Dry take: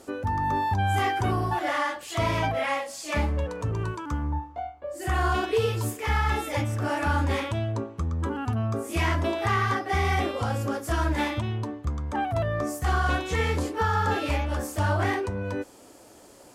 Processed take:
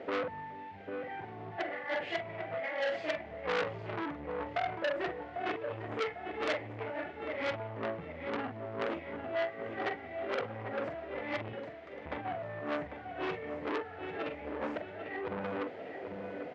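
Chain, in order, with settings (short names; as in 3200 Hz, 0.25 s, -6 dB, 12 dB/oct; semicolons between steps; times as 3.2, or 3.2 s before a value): 11.48–12.06 differentiator; notches 60/120/180/240/300/360/420 Hz; negative-ratio compressor -33 dBFS, ratio -0.5; added noise white -50 dBFS; speaker cabinet 120–2800 Hz, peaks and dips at 170 Hz +8 dB, 460 Hz +9 dB, 660 Hz +9 dB, 1100 Hz -7 dB, 2000 Hz +9 dB; doubler 45 ms -7 dB; feedback echo 0.798 s, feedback 39%, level -9 dB; core saturation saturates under 2500 Hz; gain -5.5 dB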